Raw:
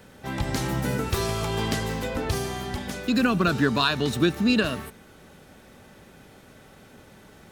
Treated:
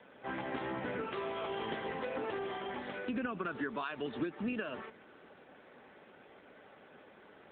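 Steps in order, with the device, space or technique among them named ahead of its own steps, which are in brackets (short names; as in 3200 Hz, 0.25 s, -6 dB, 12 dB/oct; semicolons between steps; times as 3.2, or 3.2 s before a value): voicemail (BPF 320–3200 Hz; compressor 10:1, threshold -30 dBFS, peak gain reduction 12 dB; gain -2.5 dB; AMR-NB 7.95 kbps 8000 Hz)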